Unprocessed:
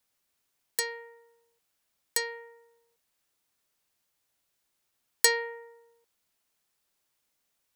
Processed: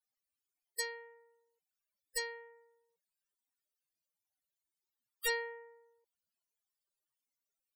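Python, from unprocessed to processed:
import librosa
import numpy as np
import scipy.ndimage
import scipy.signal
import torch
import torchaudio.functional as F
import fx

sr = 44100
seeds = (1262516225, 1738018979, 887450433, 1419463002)

y = (np.mod(10.0 ** (17.5 / 20.0) * x + 1.0, 2.0) - 1.0) / 10.0 ** (17.5 / 20.0)
y = fx.spec_topn(y, sr, count=32)
y = fx.high_shelf(y, sr, hz=5100.0, db=4.5)
y = F.gain(torch.from_numpy(y), -6.0).numpy()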